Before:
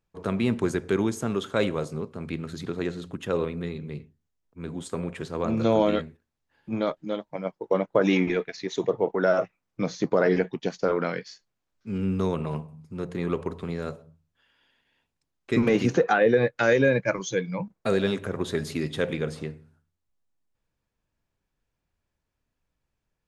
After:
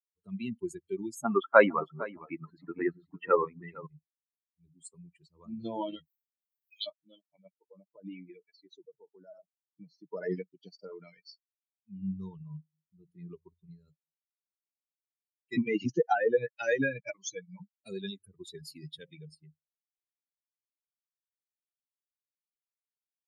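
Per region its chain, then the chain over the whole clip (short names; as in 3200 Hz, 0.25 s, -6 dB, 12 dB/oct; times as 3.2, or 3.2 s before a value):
1.24–3.87 EQ curve 140 Hz 0 dB, 280 Hz +8 dB, 410 Hz +6 dB, 730 Hz +14 dB, 1600 Hz +14 dB, 3600 Hz -3 dB, 8900 Hz -12 dB + echo 0.457 s -6.5 dB
6.05–6.85 spectral limiter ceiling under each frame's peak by 28 dB + steep high-pass 2900 Hz + doubler 19 ms -5 dB
7.67–10.08 high shelf 2800 Hz -9.5 dB + compressor 3:1, threshold -25 dBFS
whole clip: per-bin expansion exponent 3; HPF 180 Hz 12 dB/oct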